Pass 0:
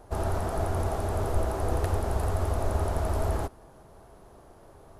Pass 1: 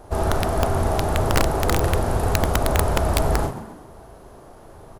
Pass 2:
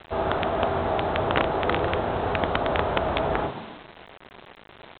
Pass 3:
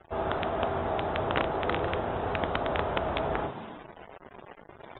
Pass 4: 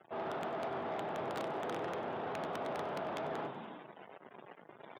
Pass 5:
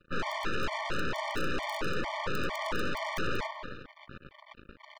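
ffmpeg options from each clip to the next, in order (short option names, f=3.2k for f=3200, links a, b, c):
-filter_complex "[0:a]asplit=2[a][b];[b]adelay=38,volume=-5dB[c];[a][c]amix=inputs=2:normalize=0,asplit=2[d][e];[e]asplit=4[f][g][h][i];[f]adelay=131,afreqshift=83,volume=-13dB[j];[g]adelay=262,afreqshift=166,volume=-20.1dB[k];[h]adelay=393,afreqshift=249,volume=-27.3dB[l];[i]adelay=524,afreqshift=332,volume=-34.4dB[m];[j][k][l][m]amix=inputs=4:normalize=0[n];[d][n]amix=inputs=2:normalize=0,aeval=exprs='(mod(6.68*val(0)+1,2)-1)/6.68':c=same,volume=6.5dB"
-af "highpass=f=280:p=1,aresample=8000,acrusher=bits=6:mix=0:aa=0.000001,aresample=44100"
-af "afftdn=nr=34:nf=-46,areverse,acompressor=mode=upward:threshold=-31dB:ratio=2.5,areverse,volume=-5dB"
-filter_complex "[0:a]asoftclip=type=tanh:threshold=-27.5dB,highpass=f=140:w=0.5412,highpass=f=140:w=1.3066,asplit=6[a][b][c][d][e][f];[b]adelay=96,afreqshift=42,volume=-17dB[g];[c]adelay=192,afreqshift=84,volume=-22.7dB[h];[d]adelay=288,afreqshift=126,volume=-28.4dB[i];[e]adelay=384,afreqshift=168,volume=-34dB[j];[f]adelay=480,afreqshift=210,volume=-39.7dB[k];[a][g][h][i][j][k]amix=inputs=6:normalize=0,volume=-5.5dB"
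-af "aeval=exprs='0.0473*(cos(1*acos(clip(val(0)/0.0473,-1,1)))-cos(1*PI/2))+0.00596*(cos(5*acos(clip(val(0)/0.0473,-1,1)))-cos(5*PI/2))+0.0119*(cos(7*acos(clip(val(0)/0.0473,-1,1)))-cos(7*PI/2))+0.0211*(cos(8*acos(clip(val(0)/0.0473,-1,1)))-cos(8*PI/2))':c=same,asuperstop=centerf=740:order=4:qfactor=6,afftfilt=real='re*gt(sin(2*PI*2.2*pts/sr)*(1-2*mod(floor(b*sr/1024/600),2)),0)':imag='im*gt(sin(2*PI*2.2*pts/sr)*(1-2*mod(floor(b*sr/1024/600),2)),0)':win_size=1024:overlap=0.75,volume=4dB"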